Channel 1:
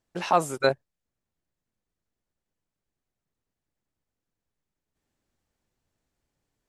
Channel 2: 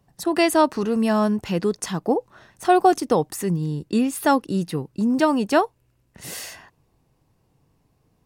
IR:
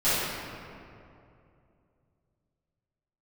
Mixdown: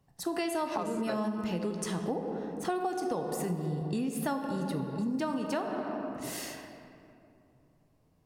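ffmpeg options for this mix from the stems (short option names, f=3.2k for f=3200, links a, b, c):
-filter_complex "[0:a]adelay=450,volume=1dB[a];[1:a]volume=-7.5dB,asplit=3[b][c][d];[c]volume=-18.5dB[e];[d]apad=whole_len=314477[f];[a][f]sidechaincompress=threshold=-36dB:ratio=8:attack=16:release=104[g];[2:a]atrim=start_sample=2205[h];[e][h]afir=irnorm=-1:irlink=0[i];[g][b][i]amix=inputs=3:normalize=0,acompressor=threshold=-29dB:ratio=6"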